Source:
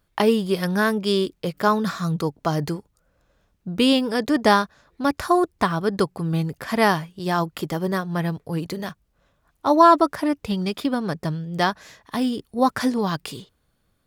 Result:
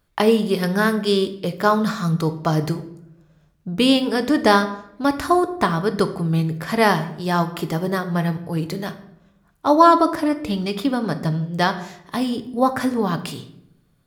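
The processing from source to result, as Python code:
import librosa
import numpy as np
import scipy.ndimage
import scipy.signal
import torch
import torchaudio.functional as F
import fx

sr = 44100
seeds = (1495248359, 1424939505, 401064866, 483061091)

y = fx.peak_eq(x, sr, hz=4700.0, db=-6.5, octaves=1.4, at=(12.59, 13.19))
y = fx.room_shoebox(y, sr, seeds[0], volume_m3=180.0, walls='mixed', distance_m=0.36)
y = F.gain(torch.from_numpy(y), 1.5).numpy()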